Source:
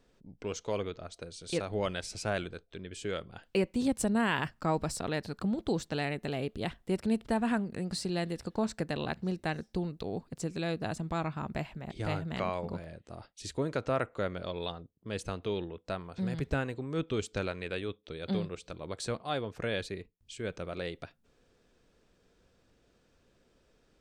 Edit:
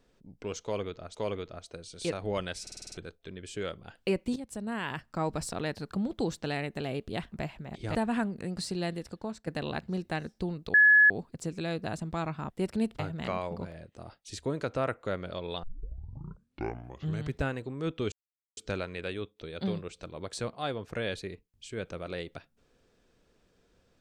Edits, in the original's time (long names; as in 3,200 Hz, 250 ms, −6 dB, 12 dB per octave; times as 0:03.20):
0:00.63–0:01.15: repeat, 2 plays
0:02.10: stutter in place 0.05 s, 7 plays
0:03.84–0:04.92: fade in, from −14 dB
0:06.80–0:07.29: swap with 0:11.48–0:12.11
0:08.21–0:08.81: fade out, to −12.5 dB
0:10.08: insert tone 1,700 Hz −15.5 dBFS 0.36 s
0:14.75: tape start 1.75 s
0:17.24: splice in silence 0.45 s